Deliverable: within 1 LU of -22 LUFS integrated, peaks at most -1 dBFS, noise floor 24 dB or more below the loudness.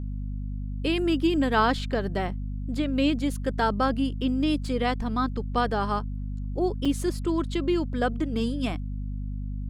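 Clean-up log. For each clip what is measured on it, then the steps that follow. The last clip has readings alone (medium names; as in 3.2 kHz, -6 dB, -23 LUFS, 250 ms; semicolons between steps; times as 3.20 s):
dropouts 1; longest dropout 5.2 ms; hum 50 Hz; highest harmonic 250 Hz; hum level -29 dBFS; loudness -27.0 LUFS; peak level -9.5 dBFS; loudness target -22.0 LUFS
-> interpolate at 6.85 s, 5.2 ms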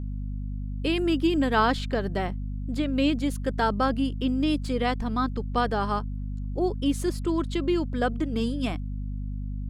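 dropouts 0; hum 50 Hz; highest harmonic 250 Hz; hum level -29 dBFS
-> hum notches 50/100/150/200/250 Hz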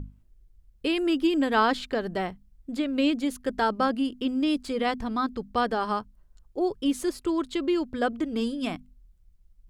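hum not found; loudness -27.5 LUFS; peak level -10.5 dBFS; loudness target -22.0 LUFS
-> trim +5.5 dB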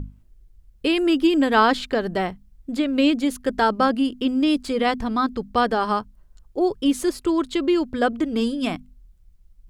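loudness -22.0 LUFS; peak level -5.0 dBFS; noise floor -54 dBFS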